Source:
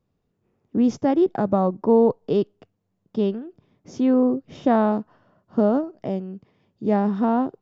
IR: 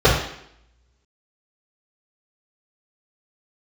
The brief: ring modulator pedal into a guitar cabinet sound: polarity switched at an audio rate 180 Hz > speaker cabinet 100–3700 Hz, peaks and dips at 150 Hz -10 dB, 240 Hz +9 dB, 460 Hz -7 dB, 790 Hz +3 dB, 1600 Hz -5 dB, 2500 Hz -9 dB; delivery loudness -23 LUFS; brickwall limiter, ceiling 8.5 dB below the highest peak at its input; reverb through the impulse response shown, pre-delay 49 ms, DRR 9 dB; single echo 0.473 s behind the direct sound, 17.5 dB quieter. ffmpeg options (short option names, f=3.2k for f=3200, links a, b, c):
-filter_complex "[0:a]alimiter=limit=-15.5dB:level=0:latency=1,aecho=1:1:473:0.133,asplit=2[a][b];[1:a]atrim=start_sample=2205,adelay=49[c];[b][c]afir=irnorm=-1:irlink=0,volume=-34dB[d];[a][d]amix=inputs=2:normalize=0,aeval=exprs='val(0)*sgn(sin(2*PI*180*n/s))':c=same,highpass=100,equalizer=f=150:t=q:w=4:g=-10,equalizer=f=240:t=q:w=4:g=9,equalizer=f=460:t=q:w=4:g=-7,equalizer=f=790:t=q:w=4:g=3,equalizer=f=1.6k:t=q:w=4:g=-5,equalizer=f=2.5k:t=q:w=4:g=-9,lowpass=f=3.7k:w=0.5412,lowpass=f=3.7k:w=1.3066,volume=3dB"